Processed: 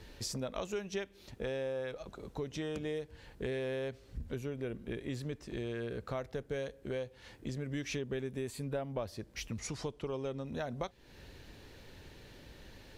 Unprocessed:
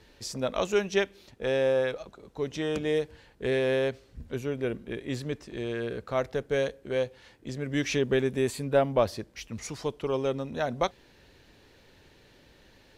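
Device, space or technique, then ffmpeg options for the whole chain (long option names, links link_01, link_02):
ASMR close-microphone chain: -filter_complex "[0:a]lowshelf=frequency=160:gain=6.5,acompressor=threshold=-39dB:ratio=4,highshelf=frequency=9300:gain=4,asettb=1/sr,asplit=3[link_01][link_02][link_03];[link_01]atrim=end=9.614[link_04];[link_02]atrim=start=9.61:end=10.46,asetpts=PTS-STARTPTS,afade=type=in:duration=0.004:curve=qsin,afade=type=out:start_time=0.846:duration=0.004:curve=qsin,lowpass=10000[link_05];[link_03]atrim=start=10.456[link_06];[link_04][link_05]acrossfade=duration=0.004:curve1=hsin:curve2=qsin[link_07];[link_07][link_06]acrossfade=duration=0.004:curve1=qsin:curve2=hsin,volume=1.5dB"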